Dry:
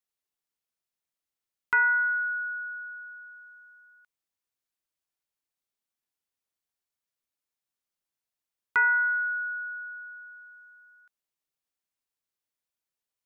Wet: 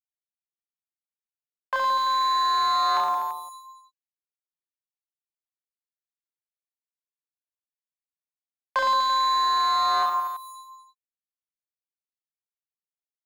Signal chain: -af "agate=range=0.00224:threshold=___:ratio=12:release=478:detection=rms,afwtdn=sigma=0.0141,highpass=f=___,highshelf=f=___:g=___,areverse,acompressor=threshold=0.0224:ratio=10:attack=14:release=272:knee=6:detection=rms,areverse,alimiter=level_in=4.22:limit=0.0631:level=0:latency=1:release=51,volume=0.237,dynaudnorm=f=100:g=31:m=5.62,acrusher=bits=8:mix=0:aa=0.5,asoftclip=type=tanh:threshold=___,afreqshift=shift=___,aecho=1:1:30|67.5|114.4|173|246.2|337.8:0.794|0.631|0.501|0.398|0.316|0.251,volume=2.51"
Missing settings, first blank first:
0.00355, 1000, 2200, 5, 0.0596, -410